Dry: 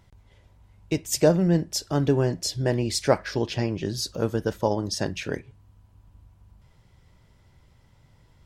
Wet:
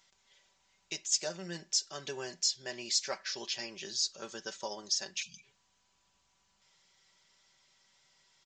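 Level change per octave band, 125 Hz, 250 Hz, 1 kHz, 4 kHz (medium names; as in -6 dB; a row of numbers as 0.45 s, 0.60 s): -28.5 dB, -23.5 dB, -14.0 dB, -1.0 dB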